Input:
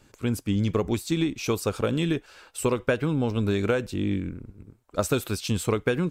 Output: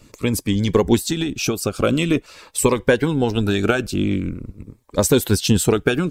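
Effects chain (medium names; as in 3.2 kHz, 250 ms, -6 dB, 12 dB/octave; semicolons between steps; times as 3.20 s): harmonic-percussive split harmonic -9 dB; 0.97–1.79 s: compression 4:1, threshold -30 dBFS, peak gain reduction 8.5 dB; loudness maximiser +12.5 dB; Shepard-style phaser falling 0.45 Hz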